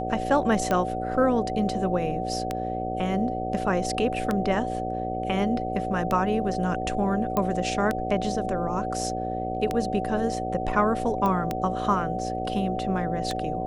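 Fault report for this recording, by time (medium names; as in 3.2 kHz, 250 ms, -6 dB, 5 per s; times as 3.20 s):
buzz 60 Hz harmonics 11 -32 dBFS
tick 33 1/3 rpm -12 dBFS
whine 750 Hz -30 dBFS
7.37 s: pop -12 dBFS
11.26 s: pop -15 dBFS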